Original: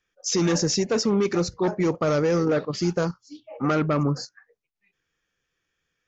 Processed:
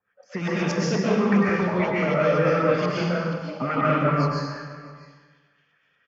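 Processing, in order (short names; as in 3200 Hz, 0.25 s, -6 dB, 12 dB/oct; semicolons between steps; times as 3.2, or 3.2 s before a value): HPF 130 Hz; bell 340 Hz -13 dB 0.51 oct; notch 3800 Hz, Q 7.2; in parallel at -1 dB: compressor, threshold -35 dBFS, peak gain reduction 14 dB; on the sum: limiter -17.5 dBFS, peak gain reduction 6 dB; rotary speaker horn 8 Hz; LFO low-pass saw up 4.2 Hz 830–3700 Hz; on a send: echo 0.656 s -21 dB; on the sum: digital reverb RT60 1.3 s, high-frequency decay 0.95×, pre-delay 90 ms, DRR -6.5 dB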